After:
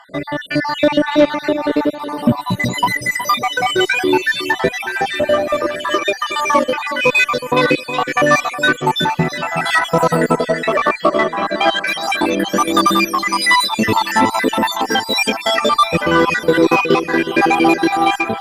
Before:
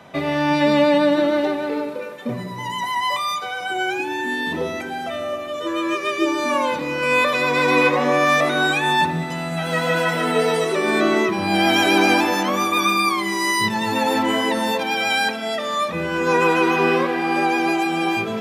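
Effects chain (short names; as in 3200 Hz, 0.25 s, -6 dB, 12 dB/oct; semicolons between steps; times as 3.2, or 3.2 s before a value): random spectral dropouts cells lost 69%; 2.03–2.66 comb 1.1 ms, depth 93%; in parallel at +2 dB: compressor, threshold -31 dBFS, peak gain reduction 15.5 dB; 10.36–11.87 on the sum: speaker cabinet 290–6500 Hz, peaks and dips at 430 Hz -10 dB, 630 Hz +9 dB, 1200 Hz +10 dB, 2000 Hz +4 dB, 5600 Hz -8 dB; AGC gain up to 11 dB; on a send: echo with dull and thin repeats by turns 0.367 s, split 1700 Hz, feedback 63%, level -9 dB; on the sum: added harmonics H 4 -30 dB, 5 -19 dB, 6 -31 dB, 7 -20 dB, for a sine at 1 dBFS; gain -1 dB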